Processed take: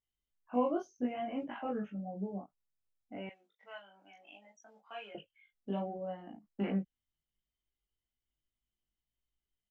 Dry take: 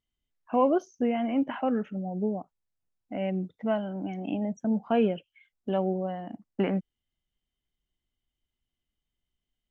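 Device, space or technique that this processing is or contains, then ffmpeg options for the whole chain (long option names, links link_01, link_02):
double-tracked vocal: -filter_complex "[0:a]asplit=2[link_01][link_02];[link_02]adelay=20,volume=-2dB[link_03];[link_01][link_03]amix=inputs=2:normalize=0,flanger=delay=17.5:depth=3.4:speed=0.64,asettb=1/sr,asplit=3[link_04][link_05][link_06];[link_04]atrim=end=3.294[link_07];[link_05]atrim=start=3.29:end=5.15,asetpts=PTS-STARTPTS,afade=type=in:duration=0.004:curve=qsin,afade=type=out:start_time=1.856:duration=0.004:curve=qsin,highpass=1300[link_08];[link_06]atrim=start=5.146[link_09];[link_07][link_08]acrossfade=duration=0.004:curve1=hsin:curve2=qsin[link_10];[link_10][link_09]acrossfade=duration=0.004:curve1=qsin:curve2=hsin,volume=-7dB"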